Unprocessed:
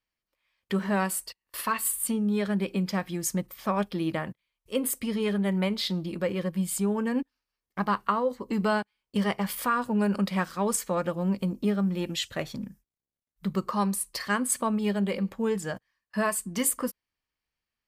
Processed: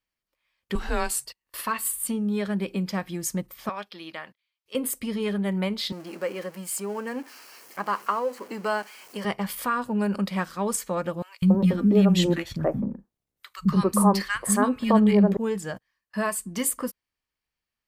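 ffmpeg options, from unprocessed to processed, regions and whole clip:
-filter_complex "[0:a]asettb=1/sr,asplit=3[a][b][c];[a]atrim=end=0.754[d];[b]atrim=start=0.75:end=1.25,asetpts=PTS-STARTPTS,afade=t=in:d=0.004:c=qsin,afade=t=out:st=0.496:d=0.004:c=qsin,equalizer=f=5k:w=0.8:g=8,afreqshift=-170[e];[c]atrim=start=1.246[f];[d][e]acrossfade=d=0.004:c1=hsin:c2=qsin[g];[g][f]acrossfade=d=0.004:c1=qsin:c2=hsin,asettb=1/sr,asplit=3[h][i][j];[h]atrim=end=3.694[k];[i]atrim=start=3.69:end=4.75,asetpts=PTS-STARTPTS,afade=t=in:d=0.004:c=qsin,afade=t=out:st=1.056:d=0.004:c=qsin,highpass=f=1.5k:p=1,highshelf=f=6.2k:t=q:w=1.5:g=-7.5[l];[j]atrim=start=4.746[m];[k][l]acrossfade=d=0.004:c1=hsin:c2=qsin[n];[n][m]acrossfade=d=0.004:c1=qsin:c2=hsin,asettb=1/sr,asplit=3[o][p][q];[o]atrim=end=5.924[r];[p]atrim=start=5.92:end=9.25,asetpts=PTS-STARTPTS,afade=t=in:d=0.004:c=qsin,afade=t=out:st=3.326:d=0.004:c=qsin,aeval=exprs='val(0)+0.5*0.0106*sgn(val(0))':c=same,highpass=370,equalizer=f=3.6k:w=6.8:g=-11.5[s];[q]atrim=start=9.246[t];[r][s]acrossfade=d=0.004:c1=hsin:c2=qsin[u];[u][t]acrossfade=d=0.004:c1=qsin:c2=hsin,asettb=1/sr,asplit=3[v][w][x];[v]atrim=end=11.224[y];[w]atrim=start=11.22:end=15.37,asetpts=PTS-STARTPTS,afade=t=in:d=0.004:c=qsin,afade=t=out:st=4.146:d=0.004:c=qsin,acontrast=56,tiltshelf=f=1.4k:g=4.5,acrossover=split=250|1400[z][aa][ab];[z]adelay=200[ac];[aa]adelay=280[ad];[ac][ad][ab]amix=inputs=3:normalize=0,atrim=end_sample=183015[ae];[x]atrim=start=15.366[af];[y][ae]acrossfade=d=0.004:c1=hsin:c2=qsin[ag];[ag][af]acrossfade=d=0.004:c1=qsin:c2=hsin"

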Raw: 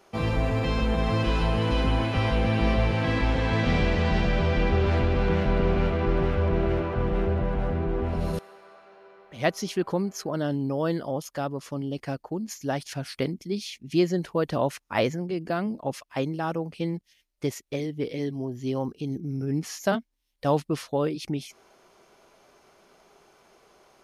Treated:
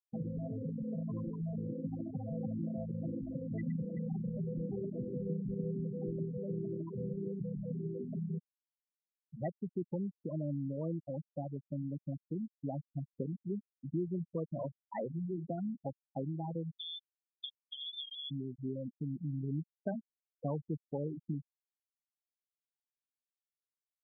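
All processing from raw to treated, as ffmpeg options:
-filter_complex "[0:a]asettb=1/sr,asplit=3[a][b][c];[a]atrim=end=14.184[d];[b]atrim=start=14.18:end=15.43,asetpts=PTS-STARTPTS,afade=t=in:d=0.004:c=qsin,afade=t=out:st=1.246:d=0.004:c=qsin,highshelf=f=5.5k:g=11.5,bandreject=f=50:t=h:w=6,bandreject=f=100:t=h:w=6,bandreject=f=150:t=h:w=6,bandreject=f=200:t=h:w=6,bandreject=f=250:t=h:w=6,bandreject=f=300:t=h:w=6,bandreject=f=350:t=h:w=6,acrusher=bits=4:mode=log:mix=0:aa=0.000001[e];[c]atrim=start=15.426[f];[d][e]acrossfade=d=0.004:c1=hsin:c2=qsin[g];[g][f]acrossfade=d=0.004:c1=qsin:c2=hsin,asettb=1/sr,asplit=3[h][i][j];[h]atrim=end=16.754[k];[i]atrim=start=16.75:end=18.31,asetpts=PTS-STARTPTS,afade=t=in:d=0.004:c=qsin,afade=t=out:st=1.556:d=0.004:c=qsin,acompressor=threshold=-32dB:ratio=6:attack=3.2:release=140:knee=1:detection=peak,lowpass=f=3.1k:t=q:w=0.5098,lowpass=f=3.1k:t=q:w=0.6013,lowpass=f=3.1k:t=q:w=0.9,lowpass=f=3.1k:t=q:w=2.563,afreqshift=-3700[l];[j]atrim=start=18.306[m];[k][l]acrossfade=d=0.004:c1=hsin:c2=qsin[n];[n][m]acrossfade=d=0.004:c1=qsin:c2=hsin,lowshelf=f=110:t=q:w=3:g=-10,acompressor=threshold=-35dB:ratio=2.5,afftfilt=real='re*gte(hypot(re,im),0.0794)':imag='im*gte(hypot(re,im),0.0794)':win_size=1024:overlap=0.75,volume=-3dB"

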